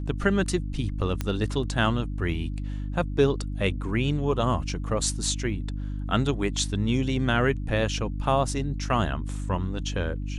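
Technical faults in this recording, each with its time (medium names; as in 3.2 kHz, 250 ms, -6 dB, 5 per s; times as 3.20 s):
hum 50 Hz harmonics 6 -31 dBFS
1.21 s: pop -14 dBFS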